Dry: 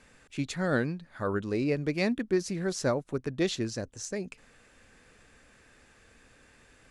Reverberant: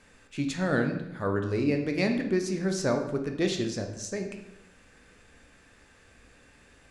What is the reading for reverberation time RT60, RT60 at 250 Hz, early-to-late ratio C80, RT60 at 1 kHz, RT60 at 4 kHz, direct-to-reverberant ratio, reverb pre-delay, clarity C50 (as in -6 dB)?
0.85 s, 0.95 s, 10.0 dB, 0.75 s, 0.65 s, 3.5 dB, 10 ms, 7.5 dB